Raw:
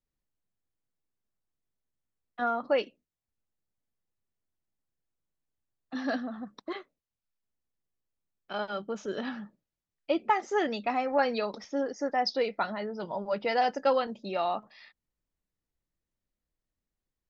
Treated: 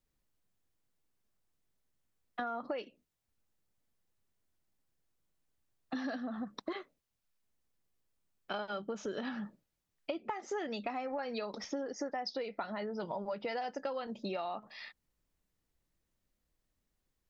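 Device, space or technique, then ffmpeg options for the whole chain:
serial compression, leveller first: -af "acompressor=threshold=0.0282:ratio=2,acompressor=threshold=0.00891:ratio=6,volume=1.88"

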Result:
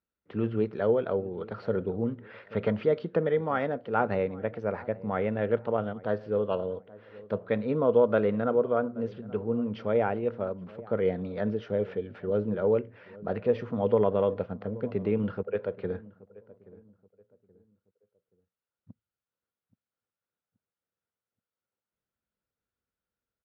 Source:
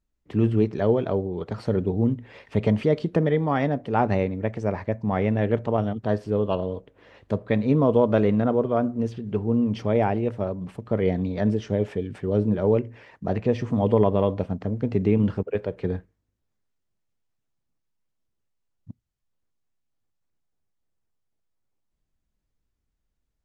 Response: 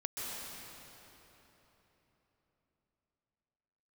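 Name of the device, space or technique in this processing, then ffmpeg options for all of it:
guitar cabinet: -filter_complex "[0:a]asettb=1/sr,asplit=3[s0][s1][s2];[s0]atrim=end=2.074[s3];[s1]atrim=start=2.07:end=2.73,asetpts=PTS-STARTPTS,afade=t=in:d=0.004:c=qsin,afade=t=out:st=0.656:d=0.004:c=qsin,equalizer=f=1500:w=1.6:g=6[s4];[s2]atrim=start=2.726[s5];[s3][s4]acrossfade=d=0.004:c1=hsin:c2=qsin[s6];[s6][s5]acrossfade=d=0.004:c1=qsin:c2=hsin,highpass=110,equalizer=f=140:t=q:w=4:g=-6,equalizer=f=290:t=q:w=4:g=-4,equalizer=f=500:t=q:w=4:g=7,equalizer=f=1400:t=q:w=4:g=10,lowpass=f=4300:w=0.5412,lowpass=f=4300:w=1.3066,asplit=2[s7][s8];[s8]adelay=827,lowpass=f=1000:p=1,volume=0.106,asplit=2[s9][s10];[s10]adelay=827,lowpass=f=1000:p=1,volume=0.35,asplit=2[s11][s12];[s12]adelay=827,lowpass=f=1000:p=1,volume=0.35[s13];[s7][s9][s11][s13]amix=inputs=4:normalize=0,volume=0.473"

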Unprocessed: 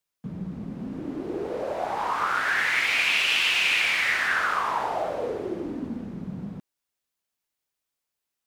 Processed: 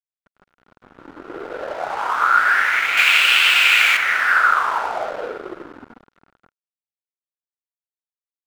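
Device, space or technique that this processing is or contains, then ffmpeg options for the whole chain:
pocket radio on a weak battery: -filter_complex "[0:a]highpass=390,lowpass=3300,aeval=exprs='sgn(val(0))*max(abs(val(0))-0.0112,0)':c=same,equalizer=f=1400:t=o:w=0.3:g=11,asettb=1/sr,asplit=3[s0][s1][s2];[s0]atrim=end=2.974[s3];[s1]atrim=start=2.97:end=3.97,asetpts=PTS-STARTPTS,afade=t=in:d=0.004:c=qsin,afade=t=out:st=0.996:d=0.004:c=qsin,highshelf=f=2000:g=9.5[s4];[s2]atrim=start=3.966[s5];[s3][s4]acrossfade=d=0.004:c1=hsin:c2=qsin[s6];[s6][s5]acrossfade=d=0.004:c1=qsin:c2=hsin,volume=1.78"

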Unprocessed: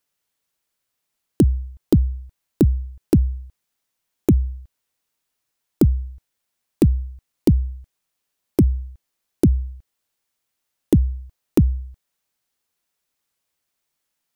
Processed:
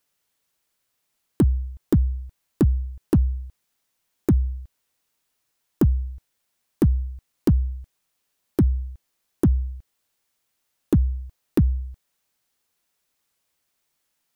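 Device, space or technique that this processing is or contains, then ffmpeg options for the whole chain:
limiter into clipper: -af "alimiter=limit=0.282:level=0:latency=1:release=366,asoftclip=type=hard:threshold=0.188,volume=1.41"

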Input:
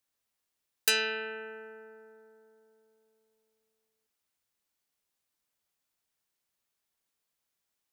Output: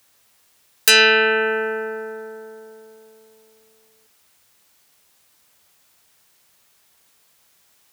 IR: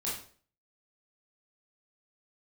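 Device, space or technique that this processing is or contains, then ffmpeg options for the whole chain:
mastering chain: -af "highpass=56,equalizer=f=280:t=o:w=1.2:g=-3,acompressor=threshold=0.00891:ratio=1.5,asoftclip=type=tanh:threshold=0.106,alimiter=level_in=18.8:limit=0.891:release=50:level=0:latency=1,volume=0.891"

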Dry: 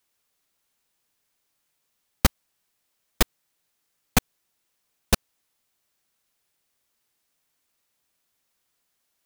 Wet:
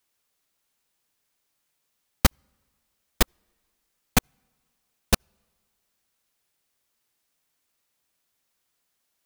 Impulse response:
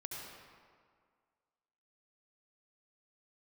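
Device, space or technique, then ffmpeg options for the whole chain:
keyed gated reverb: -filter_complex "[0:a]asplit=3[s0][s1][s2];[1:a]atrim=start_sample=2205[s3];[s1][s3]afir=irnorm=-1:irlink=0[s4];[s2]apad=whole_len=408332[s5];[s4][s5]sidechaingate=range=0.0224:threshold=0.141:ratio=16:detection=peak,volume=0.447[s6];[s0][s6]amix=inputs=2:normalize=0,volume=0.891"

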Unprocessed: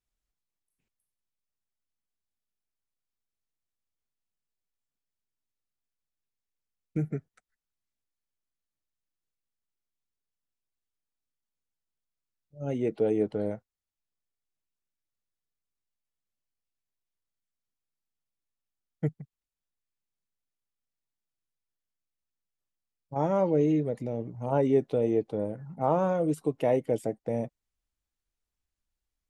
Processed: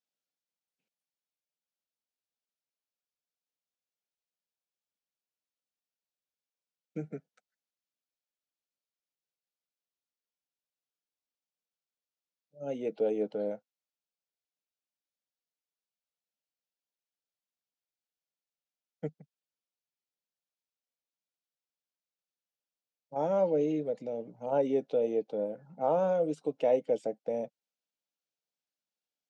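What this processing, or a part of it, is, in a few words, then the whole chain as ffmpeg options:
television speaker: -af "highpass=f=200:w=0.5412,highpass=f=200:w=1.3066,equalizer=f=240:t=q:w=4:g=-5,equalizer=f=360:t=q:w=4:g=-9,equalizer=f=520:t=q:w=4:g=4,equalizer=f=1100:t=q:w=4:g=-9,equalizer=f=1900:t=q:w=4:g=-8,lowpass=f=6600:w=0.5412,lowpass=f=6600:w=1.3066,volume=0.841"

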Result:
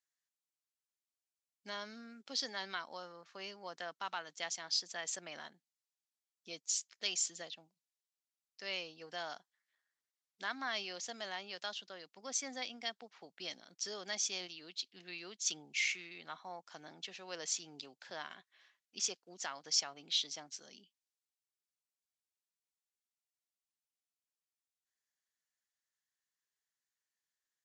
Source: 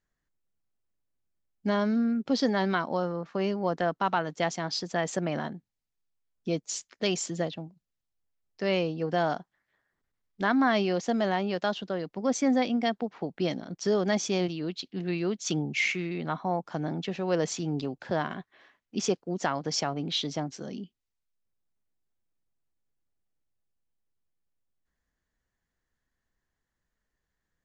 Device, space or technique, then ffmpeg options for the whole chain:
piezo pickup straight into a mixer: -af "lowpass=7500,aderivative,volume=1.33"

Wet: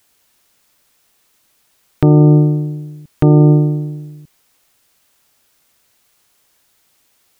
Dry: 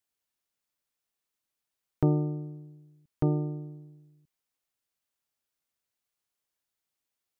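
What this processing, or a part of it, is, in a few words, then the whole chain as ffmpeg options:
loud club master: -af "acompressor=threshold=0.0398:ratio=6,asoftclip=type=hard:threshold=0.106,alimiter=level_in=25.1:limit=0.891:release=50:level=0:latency=1,volume=0.891"

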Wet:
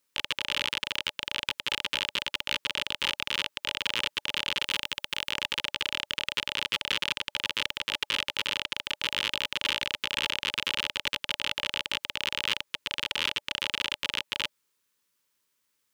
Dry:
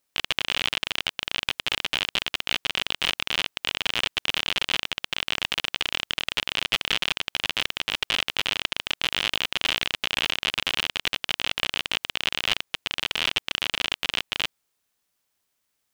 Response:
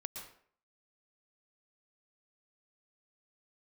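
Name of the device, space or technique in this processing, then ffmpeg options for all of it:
PA system with an anti-feedback notch: -filter_complex "[0:a]asettb=1/sr,asplit=3[s0][s1][s2];[s0]atrim=end=4.624[s3];[s1]atrim=start=4.62:end=5.32,asetpts=PTS-STARTPTS,afade=t=in:d=0.004:c=qsin,afade=t=out:st=0.696:d=0.004:c=qsin,highshelf=f=8400:g=8.5[s4];[s2]atrim=start=5.316[s5];[s3][s4]acrossfade=d=0.004:c1=hsin:c2=qsin[s6];[s6][s5]acrossfade=d=0.004:c1=qsin:c2=hsin,highpass=f=120:p=1,asuperstop=centerf=710:order=12:qfactor=2.9,alimiter=limit=0.237:level=0:latency=1:release=69"

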